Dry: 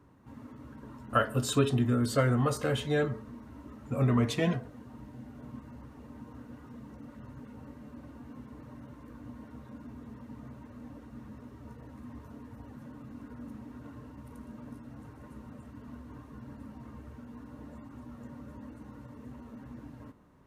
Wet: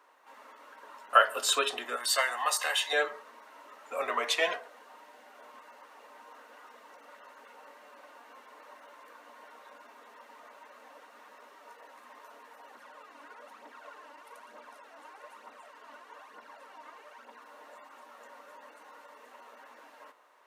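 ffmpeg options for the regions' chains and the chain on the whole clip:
ffmpeg -i in.wav -filter_complex "[0:a]asettb=1/sr,asplit=3[link_01][link_02][link_03];[link_01]atrim=end=1.964[link_04];[link_02]atrim=start=1.96:end=2.93,asetpts=PTS-STARTPTS,afade=type=in:duration=0.004:curve=qsin,afade=type=out:start_time=0.966:duration=0.004:curve=qsin,highpass=frequency=810:poles=1,highshelf=frequency=4300:gain=4.5,aecho=1:1:1.1:0.59,atrim=end_sample=42777[link_05];[link_03]atrim=start=2.926[link_06];[link_04][link_05]acrossfade=duration=0.004:curve1=hsin:curve2=qsin[link_07];[link_07][link_06]acrossfade=duration=0.004:curve1=qsin:curve2=hsin,asettb=1/sr,asplit=3[link_08][link_09][link_10];[link_08]atrim=end=12.754[link_11];[link_09]atrim=start=12.75:end=17.42,asetpts=PTS-STARTPTS,afade=type=in:duration=0.004:curve=qsin,afade=type=out:start_time=4.666:duration=0.004:curve=qsin,highshelf=frequency=11000:gain=-8.5,aphaser=in_gain=1:out_gain=1:delay=3.6:decay=0.53:speed=1.1:type=triangular[link_12];[link_10]atrim=start=17.416[link_13];[link_11][link_12]acrossfade=duration=0.004:curve1=hsin:curve2=qsin[link_14];[link_14][link_13]acrossfade=duration=0.004:curve1=qsin:curve2=hsin,highpass=frequency=570:width=0.5412,highpass=frequency=570:width=1.3066,equalizer=frequency=2700:width=0.73:gain=4,volume=5dB" out.wav

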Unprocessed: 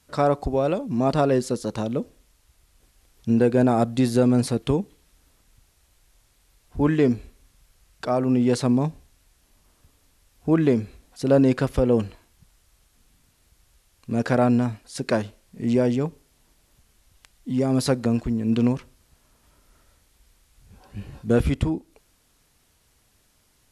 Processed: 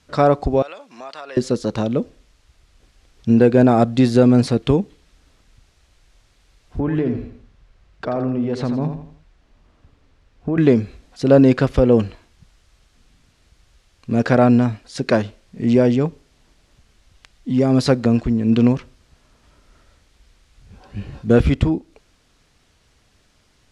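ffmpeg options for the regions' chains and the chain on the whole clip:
ffmpeg -i in.wav -filter_complex "[0:a]asettb=1/sr,asplit=3[link_01][link_02][link_03];[link_01]atrim=end=0.624[link_04];[link_02]atrim=start=0.62:end=1.37,asetpts=PTS-STARTPTS,afade=type=in:duration=0.004:curve=qsin,afade=type=out:start_time=0.746:duration=0.004:curve=qsin,highpass=1100,acompressor=threshold=-38dB:ratio=3:attack=3.2:release=140:knee=1:detection=peak[link_05];[link_03]atrim=start=1.366[link_06];[link_04][link_05]acrossfade=duration=0.004:curve1=hsin:curve2=qsin[link_07];[link_07][link_06]acrossfade=duration=0.004:curve1=qsin:curve2=hsin,asettb=1/sr,asplit=3[link_08][link_09][link_10];[link_08]atrim=end=6.794[link_11];[link_09]atrim=start=6.79:end=10.58,asetpts=PTS-STARTPTS,afade=type=in:duration=0.004:curve=qsin,afade=type=out:start_time=3.786:duration=0.004:curve=qsin,lowpass=frequency=1800:poles=1,acompressor=threshold=-23dB:ratio=6:attack=3.2:release=140:knee=1:detection=peak,aecho=1:1:84|168|252|336:0.398|0.147|0.0545|0.0202,atrim=end_sample=167139[link_12];[link_10]atrim=start=10.576[link_13];[link_11][link_12]acrossfade=duration=0.004:curve1=hsin:curve2=qsin[link_14];[link_14][link_13]acrossfade=duration=0.004:curve1=qsin:curve2=hsin,lowpass=5700,equalizer=frequency=920:width_type=o:width=0.34:gain=-2.5,volume=6dB" out.wav

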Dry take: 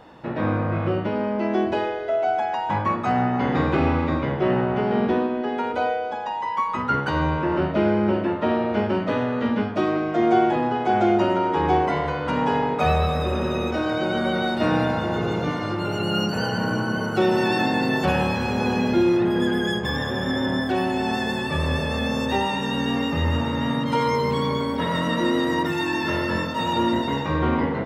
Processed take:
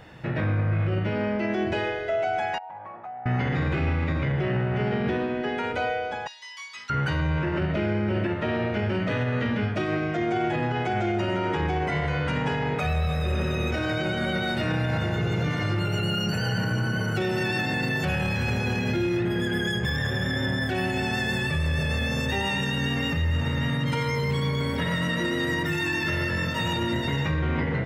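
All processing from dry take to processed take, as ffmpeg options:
ffmpeg -i in.wav -filter_complex "[0:a]asettb=1/sr,asplit=3[link_01][link_02][link_03];[link_01]atrim=end=2.584[link_04];[link_02]atrim=start=2.58:end=3.26,asetpts=PTS-STARTPTS,afade=type=in:duration=0.004:curve=qsin,afade=type=out:start_time=0.676:duration=0.004:curve=qsin,bandpass=frequency=770:width_type=q:width=4.6,acompressor=threshold=-31dB:ratio=12:attack=3.2:release=140:knee=1:detection=peak[link_05];[link_03]atrim=start=3.256[link_06];[link_04][link_05]acrossfade=duration=0.004:curve1=hsin:curve2=qsin[link_07];[link_07][link_06]acrossfade=duration=0.004:curve1=qsin:curve2=hsin,asettb=1/sr,asplit=3[link_08][link_09][link_10];[link_08]atrim=end=6.274[link_11];[link_09]atrim=start=6.27:end=6.9,asetpts=PTS-STARTPTS,afade=type=in:duration=0.004:curve=qsin,afade=type=out:start_time=0.626:duration=0.004:curve=qsin,bandpass=frequency=4600:width_type=q:width=2.4,aemphasis=mode=production:type=75fm,asplit=2[link_12][link_13];[link_13]adelay=21,volume=-5dB[link_14];[link_12][link_14]amix=inputs=2:normalize=0,atrim=end_sample=27783[link_15];[link_10]atrim=start=6.896[link_16];[link_11][link_15]acrossfade=duration=0.004:curve1=hsin:curve2=qsin[link_17];[link_17][link_16]acrossfade=duration=0.004:curve1=qsin:curve2=hsin,equalizer=frequency=125:width_type=o:width=1:gain=6,equalizer=frequency=250:width_type=o:width=1:gain=-9,equalizer=frequency=500:width_type=o:width=1:gain=-4,equalizer=frequency=1000:width_type=o:width=1:gain=-11,equalizer=frequency=2000:width_type=o:width=1:gain=4,equalizer=frequency=4000:width_type=o:width=1:gain=-4,acontrast=84,alimiter=limit=-16dB:level=0:latency=1:release=50,volume=-2dB" out.wav

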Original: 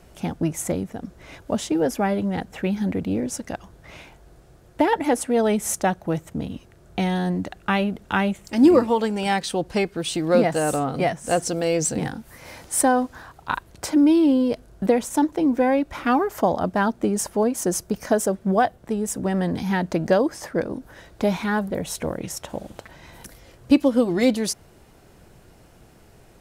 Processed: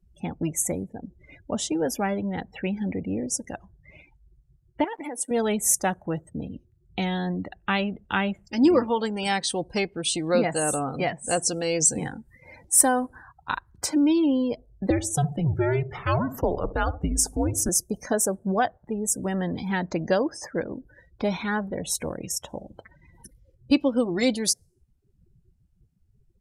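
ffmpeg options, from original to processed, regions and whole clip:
ffmpeg -i in.wav -filter_complex "[0:a]asettb=1/sr,asplit=3[link_01][link_02][link_03];[link_01]atrim=end=4.844[link_04];[link_02]atrim=start=4.84:end=5.31,asetpts=PTS-STARTPTS,afade=type=in:duration=0.004:curve=qsin,afade=type=out:start_time=0.466:duration=0.004:curve=qsin,highpass=180,acompressor=threshold=-26dB:ratio=16:attack=3.2:release=140:knee=1:detection=peak,aeval=exprs='val(0)*gte(abs(val(0)),0.00944)':channel_layout=same[link_05];[link_03]atrim=start=5.306[link_06];[link_04][link_05]acrossfade=duration=0.004:curve1=hsin:curve2=qsin[link_07];[link_07][link_06]acrossfade=duration=0.004:curve1=qsin:curve2=hsin,asettb=1/sr,asplit=3[link_08][link_09][link_10];[link_08]atrim=end=14.904[link_11];[link_09]atrim=start=14.9:end=17.69,asetpts=PTS-STARTPTS,afade=type=in:duration=0.004:curve=qsin,afade=type=out:start_time=2.786:duration=0.004:curve=qsin,asplit=2[link_12][link_13];[link_13]adelay=69,lowpass=frequency=860:poles=1,volume=-12dB,asplit=2[link_14][link_15];[link_15]adelay=69,lowpass=frequency=860:poles=1,volume=0.49,asplit=2[link_16][link_17];[link_17]adelay=69,lowpass=frequency=860:poles=1,volume=0.49,asplit=2[link_18][link_19];[link_19]adelay=69,lowpass=frequency=860:poles=1,volume=0.49,asplit=2[link_20][link_21];[link_21]adelay=69,lowpass=frequency=860:poles=1,volume=0.49[link_22];[link_12][link_14][link_16][link_18][link_20][link_22]amix=inputs=6:normalize=0,atrim=end_sample=123039,afreqshift=-150[link_23];[link_10]atrim=start=17.686[link_24];[link_11][link_23]acrossfade=duration=0.004:curve1=hsin:curve2=qsin[link_25];[link_25][link_24]acrossfade=duration=0.004:curve1=qsin:curve2=hsin,bandreject=frequency=660:width=21,afftdn=noise_reduction=35:noise_floor=-38,highshelf=frequency=2900:gain=11,volume=-4.5dB" out.wav

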